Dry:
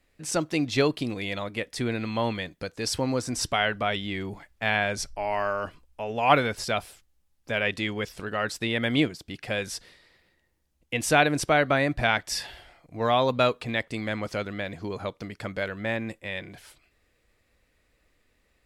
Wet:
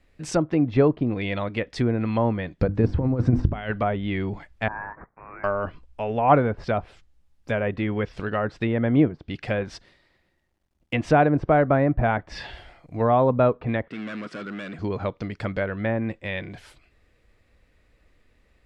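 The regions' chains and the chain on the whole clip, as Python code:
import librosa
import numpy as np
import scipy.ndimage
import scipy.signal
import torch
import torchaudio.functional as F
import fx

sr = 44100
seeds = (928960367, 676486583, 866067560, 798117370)

y = fx.chain(x, sr, fx.over_compress(threshold_db=-30.0, ratio=-0.5),
    fx.low_shelf(hz=300.0, db=10.0),
    fx.hum_notches(base_hz=50, count=7), at=(2.59, 3.71))
y = fx.chain(y, sr, fx.cvsd(bps=32000),
    fx.bessel_highpass(hz=2600.0, order=6),
    fx.freq_invert(carrier_hz=3300), at=(4.68, 5.44))
y = fx.chain(y, sr, fx.law_mismatch(coded='A'),
    fx.peak_eq(hz=470.0, db=4.0, octaves=2.5),
    fx.notch(hz=460.0, q=5.2), at=(9.61, 11.1))
y = fx.chain(y, sr, fx.overload_stage(gain_db=35.0),
    fx.cabinet(low_hz=170.0, low_slope=24, high_hz=9700.0, hz=(540.0, 860.0, 1400.0, 4300.0, 6300.0), db=(-5, -10, 7, -4, -8)), at=(13.88, 14.79))
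y = fx.high_shelf(y, sr, hz=6100.0, db=-11.0)
y = fx.env_lowpass_down(y, sr, base_hz=1100.0, full_db=-24.0)
y = fx.low_shelf(y, sr, hz=180.0, db=5.5)
y = y * 10.0 ** (4.0 / 20.0)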